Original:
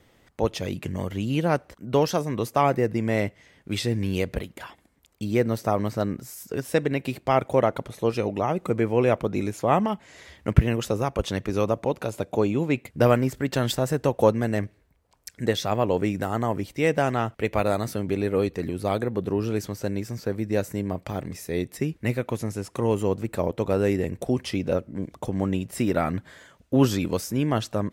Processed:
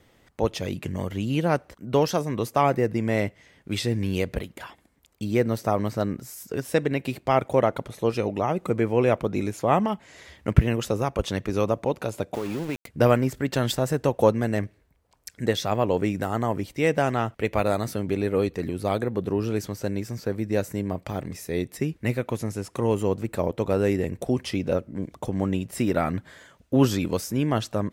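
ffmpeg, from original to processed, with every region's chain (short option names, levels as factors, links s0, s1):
-filter_complex "[0:a]asettb=1/sr,asplit=3[s0][s1][s2];[s0]atrim=end=12.344[s3];[s1]atrim=start=12.34:end=12.87,asetpts=PTS-STARTPTS,afade=t=in:d=0.004:c=qsin,afade=t=out:st=0.526:d=0.004:c=qsin,lowshelf=f=66:g=-7.5,acompressor=threshold=0.0631:ratio=10:attack=3.2:release=140:knee=1:detection=peak,aeval=exprs='val(0)*gte(abs(val(0)),0.0188)':c=same[s4];[s2]atrim=start=12.866[s5];[s3][s4]acrossfade=d=0.004:c1=hsin:c2=qsin[s6];[s6][s5]acrossfade=d=0.004:c1=qsin:c2=hsin"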